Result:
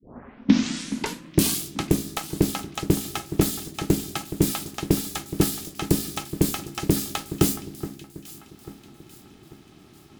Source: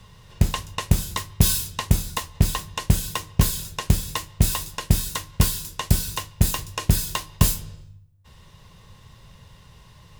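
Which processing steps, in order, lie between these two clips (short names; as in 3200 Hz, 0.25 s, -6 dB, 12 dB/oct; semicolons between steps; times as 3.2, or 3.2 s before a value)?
tape start at the beginning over 1.68 s; echo with dull and thin repeats by turns 0.421 s, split 2100 Hz, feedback 63%, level -12.5 dB; ring modulator 240 Hz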